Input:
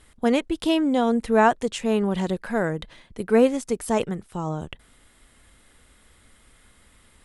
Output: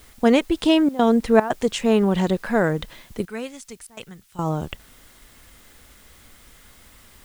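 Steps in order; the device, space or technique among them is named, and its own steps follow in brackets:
worn cassette (low-pass filter 8,800 Hz 12 dB per octave; tape wow and flutter 26 cents; tape dropouts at 0:00.89/0:01.40/0:03.87, 100 ms −16 dB; white noise bed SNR 33 dB)
0:03.25–0:04.39: guitar amp tone stack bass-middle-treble 5-5-5
level +4.5 dB

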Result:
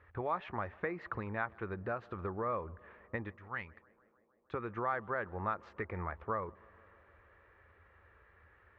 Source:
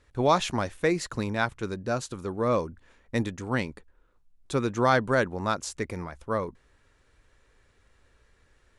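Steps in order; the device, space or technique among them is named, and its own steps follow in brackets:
0:03.30–0:04.54: guitar amp tone stack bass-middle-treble 5-5-5
bass amplifier (downward compressor 6 to 1, threshold −35 dBFS, peak gain reduction 17.5 dB; loudspeaker in its box 71–2,400 Hz, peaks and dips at 83 Hz +8 dB, 140 Hz −9 dB, 260 Hz −9 dB, 820 Hz +3 dB, 1,200 Hz +7 dB, 1,800 Hz +5 dB)
tape delay 153 ms, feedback 89%, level −23.5 dB, low-pass 1,700 Hz

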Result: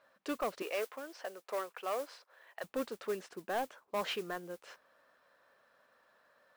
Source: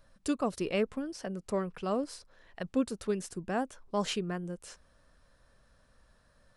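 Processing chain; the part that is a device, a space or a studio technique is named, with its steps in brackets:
carbon microphone (band-pass filter 500–2,800 Hz; soft clipping −30.5 dBFS, distortion −12 dB; noise that follows the level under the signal 18 dB)
0:00.62–0:02.64: high-pass filter 460 Hz 12 dB per octave
level +3 dB

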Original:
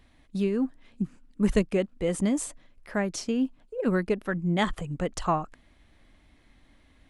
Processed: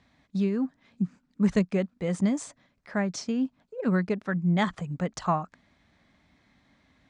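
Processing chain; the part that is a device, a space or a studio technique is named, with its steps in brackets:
car door speaker (loudspeaker in its box 100–7,000 Hz, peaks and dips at 180 Hz +4 dB, 330 Hz −6 dB, 480 Hz −4 dB, 2,900 Hz −6 dB)

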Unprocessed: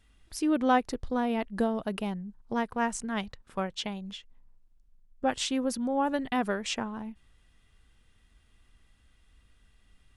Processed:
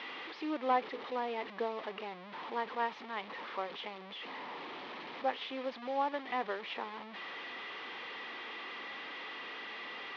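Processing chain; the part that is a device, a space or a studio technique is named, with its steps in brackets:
digital answering machine (band-pass filter 340–3,100 Hz; linear delta modulator 32 kbit/s, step −33 dBFS; loudspeaker in its box 410–3,300 Hz, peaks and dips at 640 Hz −7 dB, 1,500 Hz −8 dB, 2,700 Hz −4 dB)
level −1 dB

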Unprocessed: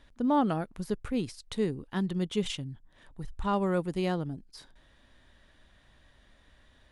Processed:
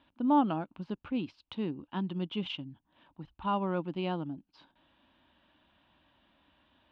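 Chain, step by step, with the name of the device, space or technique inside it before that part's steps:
guitar cabinet (loudspeaker in its box 110–3,500 Hz, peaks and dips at 120 Hz −8 dB, 300 Hz +6 dB, 440 Hz −9 dB, 930 Hz +6 dB, 1,900 Hz −9 dB, 2,800 Hz +6 dB)
level −3 dB

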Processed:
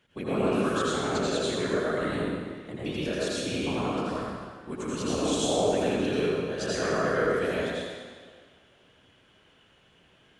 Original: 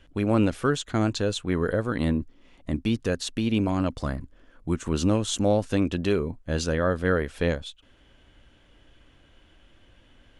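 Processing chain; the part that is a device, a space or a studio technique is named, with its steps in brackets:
whispering ghost (random phases in short frames; high-pass filter 310 Hz 6 dB per octave; convolution reverb RT60 1.8 s, pre-delay 76 ms, DRR −7 dB)
level −7 dB

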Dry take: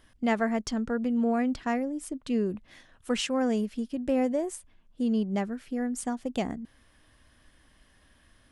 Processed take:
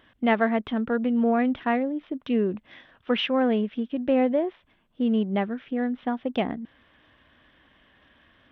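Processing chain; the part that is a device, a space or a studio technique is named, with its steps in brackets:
Bluetooth headset (high-pass filter 190 Hz 6 dB per octave; downsampling to 8,000 Hz; level +5.5 dB; SBC 64 kbit/s 32,000 Hz)

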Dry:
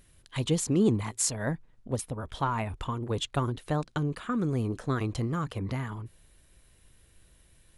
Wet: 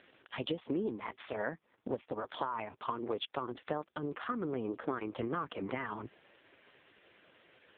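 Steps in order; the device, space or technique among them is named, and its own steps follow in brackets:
voicemail (band-pass filter 360–3,300 Hz; downward compressor 8 to 1, threshold −45 dBFS, peak gain reduction 20.5 dB; level +13 dB; AMR narrowband 4.75 kbit/s 8,000 Hz)

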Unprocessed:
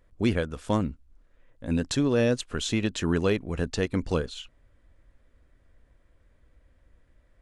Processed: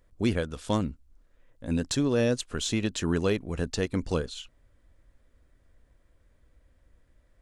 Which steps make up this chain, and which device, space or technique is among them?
exciter from parts (in parallel at −4 dB: high-pass filter 3,400 Hz 12 dB per octave + soft clipping −26 dBFS, distortion −17 dB)
0:00.44–0:00.85: on the sum: parametric band 3,700 Hz +5 dB 1.1 octaves
level −1.5 dB

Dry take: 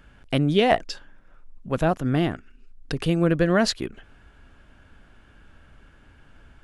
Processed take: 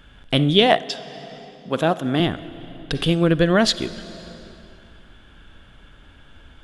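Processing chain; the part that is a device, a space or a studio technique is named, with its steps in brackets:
0:00.66–0:02.20: high-pass filter 180 Hz 12 dB per octave
compressed reverb return (on a send at −6 dB: convolution reverb RT60 2.0 s, pre-delay 38 ms + downward compressor 5 to 1, threshold −30 dBFS, peak gain reduction 14 dB)
on the sum: parametric band 3,400 Hz +12.5 dB 0.3 octaves
level +3 dB

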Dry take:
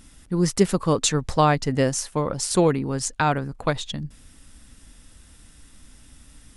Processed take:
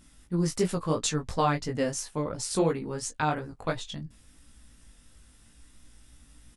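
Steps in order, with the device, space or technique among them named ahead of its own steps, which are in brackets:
double-tracked vocal (double-tracking delay 17 ms −12.5 dB; chorus effect 2.9 Hz, delay 17 ms, depth 3 ms)
level −4 dB

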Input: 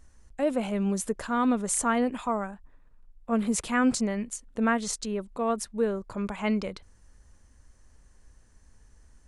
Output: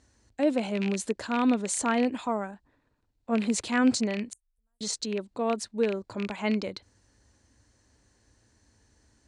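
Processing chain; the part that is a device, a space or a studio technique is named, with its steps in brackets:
0:04.33–0:04.81: inverse Chebyshev band-stop filter 130–5,200 Hz, stop band 60 dB
car door speaker with a rattle (loose part that buzzes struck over −33 dBFS, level −23 dBFS; loudspeaker in its box 94–8,600 Hz, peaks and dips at 110 Hz +5 dB, 160 Hz −8 dB, 300 Hz +5 dB, 1,200 Hz −5 dB, 4,200 Hz +7 dB)

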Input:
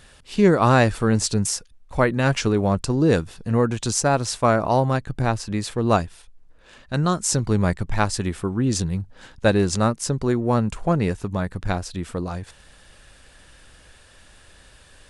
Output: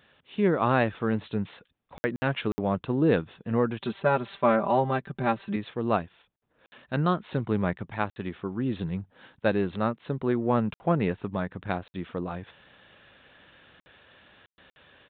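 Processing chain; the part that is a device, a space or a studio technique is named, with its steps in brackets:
0:03.81–0:05.56: comb filter 5.1 ms, depth 98%
call with lost packets (high-pass filter 140 Hz 12 dB per octave; downsampling to 8,000 Hz; automatic gain control gain up to 6 dB; dropped packets of 60 ms)
level −8 dB

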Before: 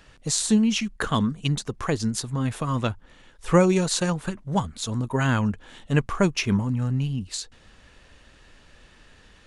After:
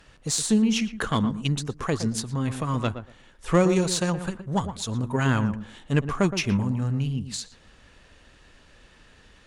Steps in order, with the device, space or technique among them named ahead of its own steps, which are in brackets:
rockabilly slapback (tube saturation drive 10 dB, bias 0.35; tape delay 117 ms, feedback 20%, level −8 dB, low-pass 1,200 Hz)

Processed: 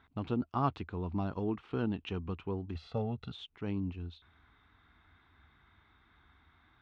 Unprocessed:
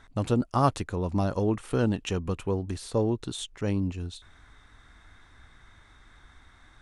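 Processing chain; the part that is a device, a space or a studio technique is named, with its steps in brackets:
guitar cabinet (loudspeaker in its box 75–3,500 Hz, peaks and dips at 80 Hz +5 dB, 110 Hz −5 dB, 550 Hz −10 dB, 1,800 Hz −5 dB)
0:02.75–0:03.32: comb filter 1.5 ms, depth 96%
level −6.5 dB

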